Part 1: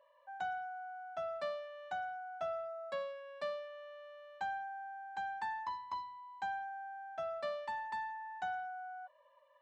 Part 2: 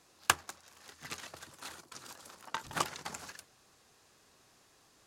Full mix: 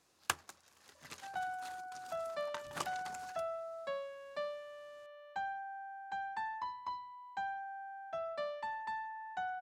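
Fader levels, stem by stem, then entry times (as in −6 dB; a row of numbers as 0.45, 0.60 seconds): −0.5, −7.5 decibels; 0.95, 0.00 seconds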